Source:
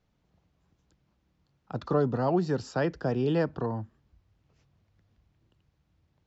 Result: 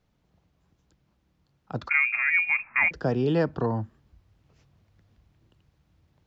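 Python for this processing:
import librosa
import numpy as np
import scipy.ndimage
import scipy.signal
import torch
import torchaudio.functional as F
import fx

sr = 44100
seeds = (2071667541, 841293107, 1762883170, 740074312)

y = fx.rider(x, sr, range_db=10, speed_s=0.5)
y = fx.freq_invert(y, sr, carrier_hz=2600, at=(1.89, 2.91))
y = F.gain(torch.from_numpy(y), 3.5).numpy()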